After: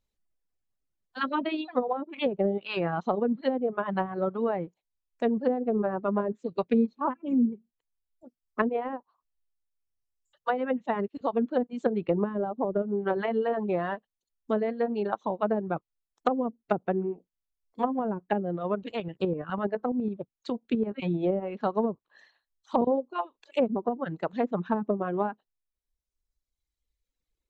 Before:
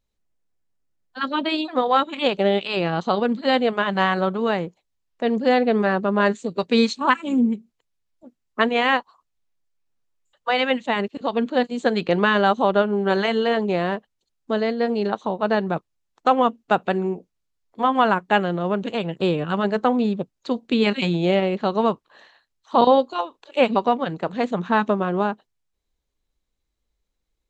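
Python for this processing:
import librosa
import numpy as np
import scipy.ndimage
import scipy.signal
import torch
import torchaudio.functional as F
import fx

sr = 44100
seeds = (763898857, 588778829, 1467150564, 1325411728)

y = fx.dereverb_blind(x, sr, rt60_s=1.6)
y = fx.env_lowpass_down(y, sr, base_hz=420.0, full_db=-16.0)
y = fx.tremolo_shape(y, sr, shape='saw_up', hz=12.0, depth_pct=55, at=(18.74, 21.05), fade=0.02)
y = F.gain(torch.from_numpy(y), -3.5).numpy()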